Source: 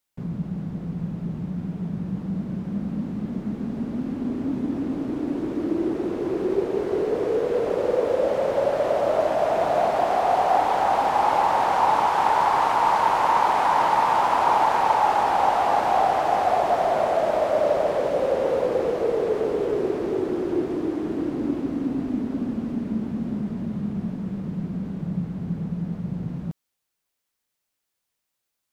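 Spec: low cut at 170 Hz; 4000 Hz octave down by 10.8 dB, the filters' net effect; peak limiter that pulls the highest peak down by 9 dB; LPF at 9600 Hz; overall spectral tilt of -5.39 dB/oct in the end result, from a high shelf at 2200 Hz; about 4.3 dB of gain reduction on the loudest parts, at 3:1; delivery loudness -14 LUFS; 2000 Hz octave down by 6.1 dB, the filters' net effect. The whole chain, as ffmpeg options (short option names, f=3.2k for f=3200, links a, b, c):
-af "highpass=170,lowpass=9.6k,equalizer=f=2k:t=o:g=-3.5,highshelf=f=2.2k:g=-6.5,equalizer=f=4k:t=o:g=-7,acompressor=threshold=-23dB:ratio=3,volume=16.5dB,alimiter=limit=-5.5dB:level=0:latency=1"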